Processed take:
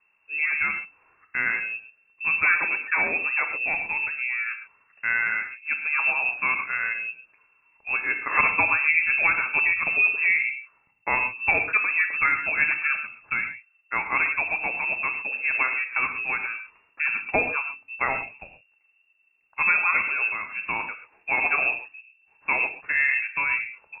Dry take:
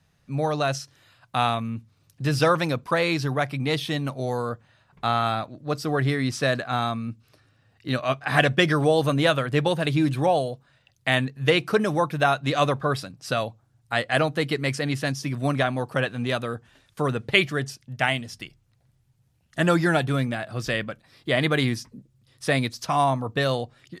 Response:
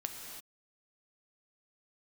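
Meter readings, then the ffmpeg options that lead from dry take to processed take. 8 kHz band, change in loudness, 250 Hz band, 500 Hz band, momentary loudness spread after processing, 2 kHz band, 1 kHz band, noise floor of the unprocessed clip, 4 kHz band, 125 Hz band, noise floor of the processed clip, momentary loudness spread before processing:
below −40 dB, +1.5 dB, −18.5 dB, −14.5 dB, 12 LU, +7.0 dB, −4.0 dB, −65 dBFS, below −30 dB, −24.5 dB, −66 dBFS, 12 LU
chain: -filter_complex "[0:a]lowpass=frequency=2400:width_type=q:width=0.5098,lowpass=frequency=2400:width_type=q:width=0.6013,lowpass=frequency=2400:width_type=q:width=0.9,lowpass=frequency=2400:width_type=q:width=2.563,afreqshift=-2800[link_01];[1:a]atrim=start_sample=2205,atrim=end_sample=6174[link_02];[link_01][link_02]afir=irnorm=-1:irlink=0"

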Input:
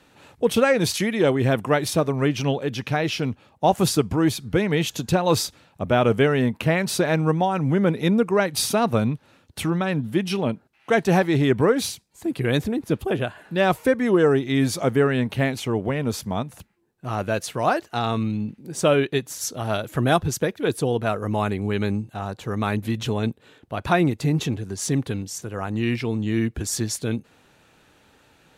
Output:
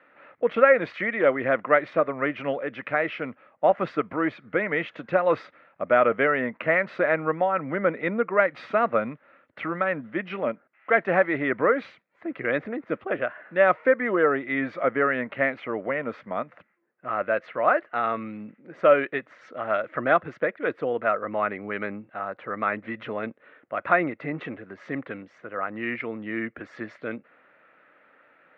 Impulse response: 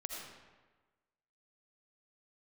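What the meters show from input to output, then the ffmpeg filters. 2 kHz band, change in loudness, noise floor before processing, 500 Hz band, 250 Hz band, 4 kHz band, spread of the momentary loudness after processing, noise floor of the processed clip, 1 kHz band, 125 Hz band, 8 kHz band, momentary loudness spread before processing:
+2.5 dB, −2.5 dB, −59 dBFS, −1.0 dB, −8.5 dB, below −15 dB, 14 LU, −63 dBFS, 0.0 dB, −17.0 dB, below −40 dB, 10 LU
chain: -af "highpass=360,equalizer=frequency=400:width_type=q:width=4:gain=-6,equalizer=frequency=570:width_type=q:width=4:gain=6,equalizer=frequency=860:width_type=q:width=4:gain=-7,equalizer=frequency=1300:width_type=q:width=4:gain=7,equalizer=frequency=2000:width_type=q:width=4:gain=8,lowpass=frequency=2200:width=0.5412,lowpass=frequency=2200:width=1.3066,volume=-1dB"

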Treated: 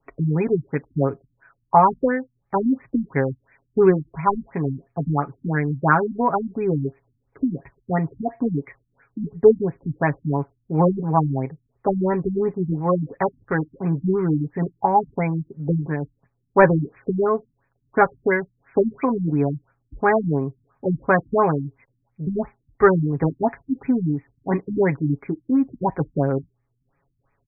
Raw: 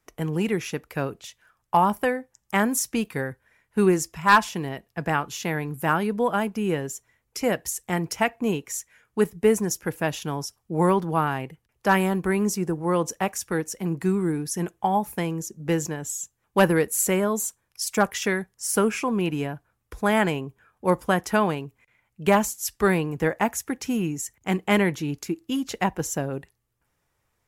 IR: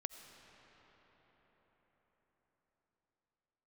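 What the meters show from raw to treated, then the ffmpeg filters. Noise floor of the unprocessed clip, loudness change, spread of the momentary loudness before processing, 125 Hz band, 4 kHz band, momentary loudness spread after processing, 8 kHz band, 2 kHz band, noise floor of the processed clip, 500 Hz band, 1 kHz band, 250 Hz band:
−75 dBFS, +3.0 dB, 10 LU, +6.0 dB, below −40 dB, 10 LU, below −40 dB, −1.0 dB, −72 dBFS, +4.0 dB, +3.0 dB, +2.5 dB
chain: -af "aecho=1:1:7.3:0.7,afftfilt=real='re*lt(b*sr/1024,280*pow(2600/280,0.5+0.5*sin(2*PI*2.9*pts/sr)))':imag='im*lt(b*sr/1024,280*pow(2600/280,0.5+0.5*sin(2*PI*2.9*pts/sr)))':win_size=1024:overlap=0.75,volume=4dB"

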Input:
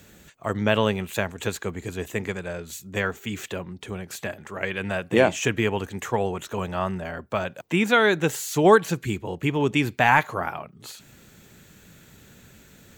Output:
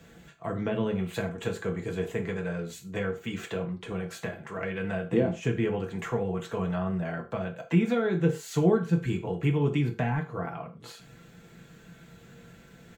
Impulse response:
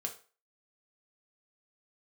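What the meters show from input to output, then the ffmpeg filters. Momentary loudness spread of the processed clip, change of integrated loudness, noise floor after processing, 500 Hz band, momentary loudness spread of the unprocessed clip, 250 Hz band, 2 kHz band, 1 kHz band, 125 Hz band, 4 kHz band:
11 LU, −5.0 dB, −53 dBFS, −5.5 dB, 15 LU, −1.5 dB, −12.0 dB, −12.5 dB, +1.0 dB, −11.5 dB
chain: -filter_complex "[0:a]lowpass=frequency=2600:poles=1,aecho=1:1:5.9:0.38,acrossover=split=360[link_01][link_02];[link_02]acompressor=threshold=-33dB:ratio=12[link_03];[link_01][link_03]amix=inputs=2:normalize=0[link_04];[1:a]atrim=start_sample=2205,atrim=end_sample=6174[link_05];[link_04][link_05]afir=irnorm=-1:irlink=0"

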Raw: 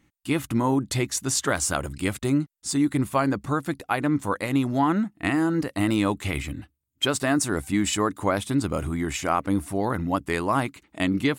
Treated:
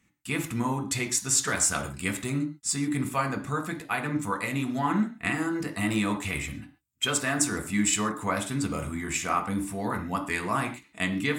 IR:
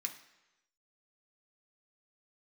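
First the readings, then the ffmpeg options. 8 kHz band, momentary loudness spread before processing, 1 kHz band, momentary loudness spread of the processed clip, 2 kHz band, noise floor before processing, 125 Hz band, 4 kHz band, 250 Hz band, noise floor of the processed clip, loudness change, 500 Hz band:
+2.5 dB, 5 LU, −3.5 dB, 7 LU, 0.0 dB, −73 dBFS, −4.5 dB, −2.0 dB, −5.0 dB, −63 dBFS, −3.0 dB, −6.5 dB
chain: -filter_complex "[1:a]atrim=start_sample=2205,atrim=end_sample=6615[link_01];[0:a][link_01]afir=irnorm=-1:irlink=0"

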